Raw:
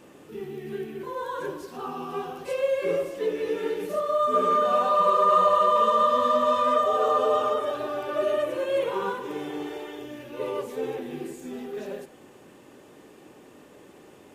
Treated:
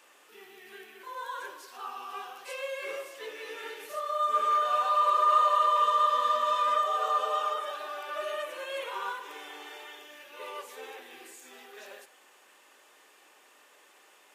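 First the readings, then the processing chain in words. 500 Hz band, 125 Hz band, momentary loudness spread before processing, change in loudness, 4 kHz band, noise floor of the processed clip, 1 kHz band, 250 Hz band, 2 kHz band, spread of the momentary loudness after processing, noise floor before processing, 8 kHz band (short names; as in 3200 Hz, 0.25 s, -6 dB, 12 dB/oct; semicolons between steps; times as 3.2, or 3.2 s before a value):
-12.0 dB, under -30 dB, 17 LU, -3.5 dB, 0.0 dB, -60 dBFS, -2.5 dB, under -20 dB, -0.5 dB, 23 LU, -51 dBFS, n/a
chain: HPF 1100 Hz 12 dB/oct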